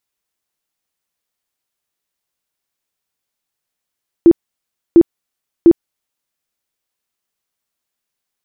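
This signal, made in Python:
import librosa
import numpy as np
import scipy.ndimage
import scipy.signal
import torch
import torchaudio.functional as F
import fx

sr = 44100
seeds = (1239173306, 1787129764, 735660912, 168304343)

y = fx.tone_burst(sr, hz=337.0, cycles=18, every_s=0.7, bursts=3, level_db=-2.0)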